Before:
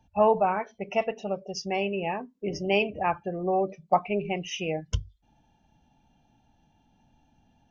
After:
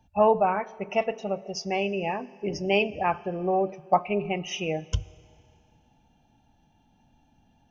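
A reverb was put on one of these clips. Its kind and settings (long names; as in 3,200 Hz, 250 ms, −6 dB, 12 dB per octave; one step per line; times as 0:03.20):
four-comb reverb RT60 2.4 s, combs from 25 ms, DRR 19.5 dB
level +1 dB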